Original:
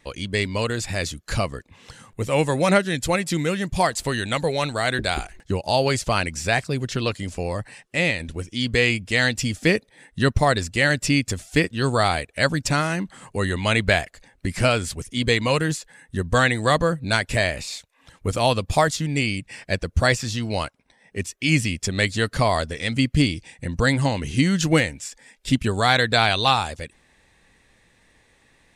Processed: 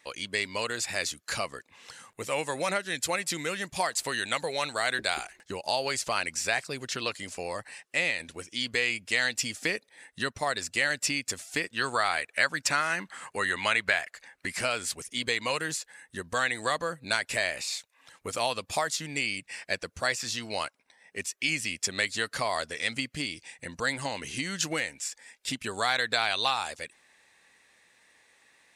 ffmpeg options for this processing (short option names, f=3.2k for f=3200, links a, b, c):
-filter_complex "[0:a]asettb=1/sr,asplit=3[a][b][c];[a]atrim=end=11.764[d];[b]atrim=start=11.76:end=14.52,asetpts=PTS-STARTPTS,afade=t=in:d=0.004:c=qsin,afade=t=out:st=2.756:d=0.004:c=qsin,equalizer=f=1.6k:w=0.83:g=6.5[e];[c]atrim=start=14.516[f];[d][e]acrossfade=d=0.004:c1=hsin:c2=qsin[g];[g][f]acrossfade=d=0.004:c1=qsin:c2=hsin,acompressor=threshold=-20dB:ratio=4,highpass=f=980:p=1,equalizer=f=3.3k:w=3.6:g=-2.5"